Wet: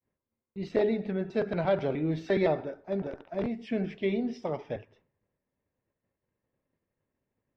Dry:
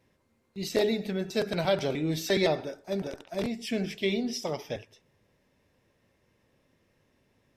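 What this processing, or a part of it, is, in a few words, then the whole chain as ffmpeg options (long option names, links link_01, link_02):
hearing-loss simulation: -af "lowpass=1800,agate=range=-33dB:threshold=-59dB:ratio=3:detection=peak"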